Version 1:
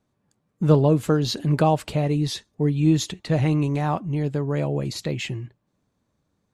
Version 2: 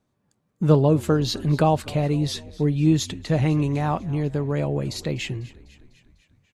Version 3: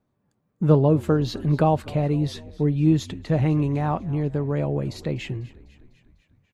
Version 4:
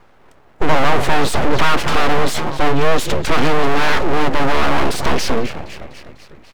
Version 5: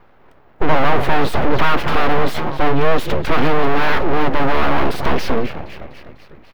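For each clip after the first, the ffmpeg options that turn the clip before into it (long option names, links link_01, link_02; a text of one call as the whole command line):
ffmpeg -i in.wav -filter_complex "[0:a]asplit=6[link_01][link_02][link_03][link_04][link_05][link_06];[link_02]adelay=249,afreqshift=-53,volume=-20.5dB[link_07];[link_03]adelay=498,afreqshift=-106,volume=-24.7dB[link_08];[link_04]adelay=747,afreqshift=-159,volume=-28.8dB[link_09];[link_05]adelay=996,afreqshift=-212,volume=-33dB[link_10];[link_06]adelay=1245,afreqshift=-265,volume=-37.1dB[link_11];[link_01][link_07][link_08][link_09][link_10][link_11]amix=inputs=6:normalize=0" out.wav
ffmpeg -i in.wav -af "equalizer=frequency=8000:width_type=o:width=2.7:gain=-10" out.wav
ffmpeg -i in.wav -filter_complex "[0:a]asplit=2[link_01][link_02];[link_02]highpass=frequency=720:poles=1,volume=36dB,asoftclip=type=tanh:threshold=-6.5dB[link_03];[link_01][link_03]amix=inputs=2:normalize=0,lowpass=frequency=1100:poles=1,volume=-6dB,aeval=exprs='abs(val(0))':channel_layout=same,volume=5dB" out.wav
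ffmpeg -i in.wav -af "equalizer=frequency=7600:width=0.86:gain=-14.5" out.wav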